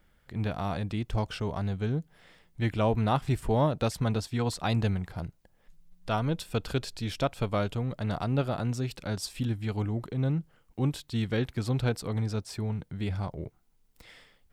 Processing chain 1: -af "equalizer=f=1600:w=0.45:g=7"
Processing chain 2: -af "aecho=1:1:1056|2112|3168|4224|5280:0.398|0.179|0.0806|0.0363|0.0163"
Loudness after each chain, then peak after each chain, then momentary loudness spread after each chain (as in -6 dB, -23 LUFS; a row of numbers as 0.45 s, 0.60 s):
-29.0 LUFS, -31.0 LUFS; -9.5 dBFS, -13.5 dBFS; 9 LU, 10 LU